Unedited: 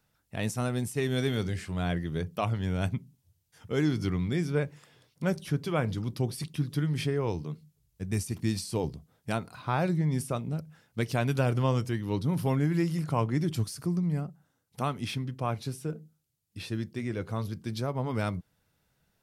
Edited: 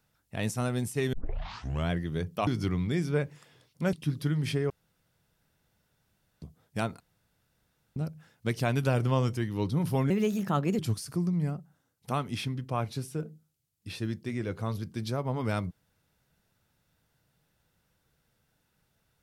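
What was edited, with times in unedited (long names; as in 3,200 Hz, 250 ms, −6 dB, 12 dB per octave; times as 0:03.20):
0:01.13: tape start 0.77 s
0:02.47–0:03.88: remove
0:05.34–0:06.45: remove
0:07.22–0:08.94: fill with room tone
0:09.52–0:10.48: fill with room tone
0:12.62–0:13.49: play speed 126%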